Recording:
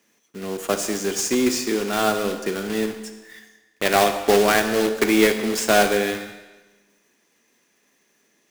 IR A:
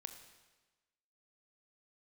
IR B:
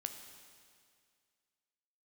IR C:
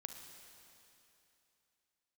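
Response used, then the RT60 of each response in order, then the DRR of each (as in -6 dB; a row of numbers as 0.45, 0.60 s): A; 1.2, 2.1, 2.9 s; 7.5, 6.0, 5.0 dB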